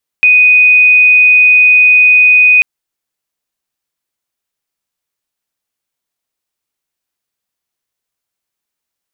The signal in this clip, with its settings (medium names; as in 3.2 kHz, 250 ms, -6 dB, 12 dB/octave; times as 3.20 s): tone sine 2.49 kHz -3 dBFS 2.39 s